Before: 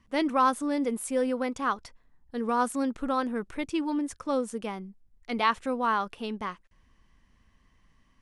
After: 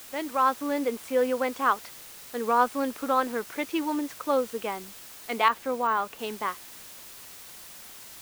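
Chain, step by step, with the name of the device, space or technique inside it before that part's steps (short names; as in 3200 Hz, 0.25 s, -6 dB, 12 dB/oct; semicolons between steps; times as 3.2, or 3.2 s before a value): dictaphone (BPF 380–3500 Hz; AGC gain up to 9 dB; wow and flutter 21 cents; white noise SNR 17 dB); 5.48–6.19 de-esser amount 70%; gain -4 dB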